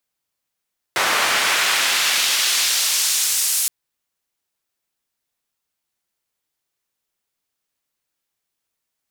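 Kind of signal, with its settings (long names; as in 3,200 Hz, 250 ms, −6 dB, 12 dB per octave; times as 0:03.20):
filter sweep on noise white, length 2.72 s bandpass, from 1,100 Hz, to 9,100 Hz, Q 0.81, exponential, gain ramp −8 dB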